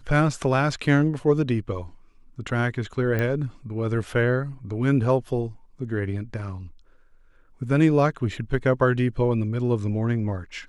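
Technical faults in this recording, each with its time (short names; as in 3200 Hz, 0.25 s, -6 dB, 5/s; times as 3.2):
3.19 pop -14 dBFS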